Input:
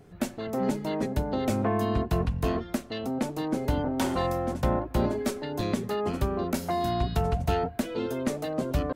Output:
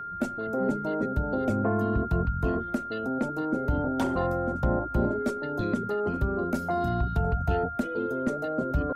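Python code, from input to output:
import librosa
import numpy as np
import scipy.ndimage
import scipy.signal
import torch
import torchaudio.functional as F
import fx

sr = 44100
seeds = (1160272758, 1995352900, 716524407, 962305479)

y = fx.envelope_sharpen(x, sr, power=1.5)
y = y + 10.0 ** (-34.0 / 20.0) * np.sin(2.0 * np.pi * 1400.0 * np.arange(len(y)) / sr)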